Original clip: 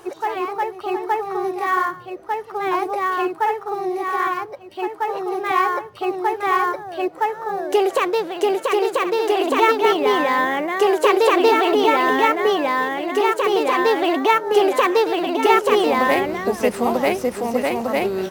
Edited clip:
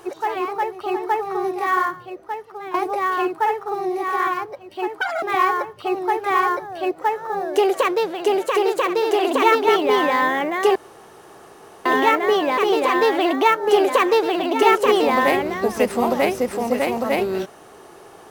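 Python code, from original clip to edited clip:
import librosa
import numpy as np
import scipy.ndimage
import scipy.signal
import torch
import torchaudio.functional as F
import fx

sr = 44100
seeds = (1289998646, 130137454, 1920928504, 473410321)

y = fx.edit(x, sr, fx.fade_out_to(start_s=1.87, length_s=0.87, floor_db=-12.5),
    fx.speed_span(start_s=5.01, length_s=0.38, speed=1.77),
    fx.room_tone_fill(start_s=10.92, length_s=1.1),
    fx.cut(start_s=12.74, length_s=0.67), tone=tone)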